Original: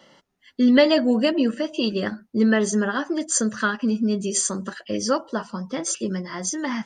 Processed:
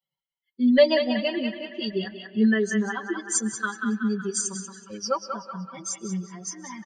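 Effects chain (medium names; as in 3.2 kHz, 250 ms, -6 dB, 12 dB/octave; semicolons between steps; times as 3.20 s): expander on every frequency bin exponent 2; comb 5.2 ms, depth 87%; band-passed feedback delay 187 ms, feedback 63%, band-pass 2 kHz, level -3.5 dB; on a send at -18 dB: reverberation RT60 2.4 s, pre-delay 90 ms; on the sum: trim -3 dB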